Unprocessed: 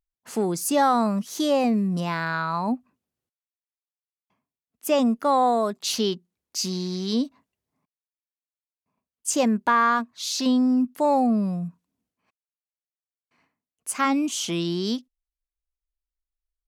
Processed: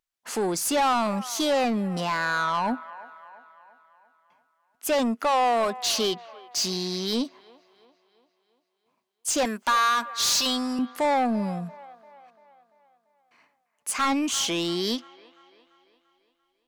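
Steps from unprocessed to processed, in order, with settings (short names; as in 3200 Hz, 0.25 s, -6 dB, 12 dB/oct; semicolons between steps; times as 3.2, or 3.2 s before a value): 9.45–10.79 tilt +3.5 dB/oct; overdrive pedal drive 21 dB, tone 7700 Hz, clips at -8 dBFS; band-limited delay 0.342 s, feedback 51%, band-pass 1100 Hz, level -16 dB; gain -7.5 dB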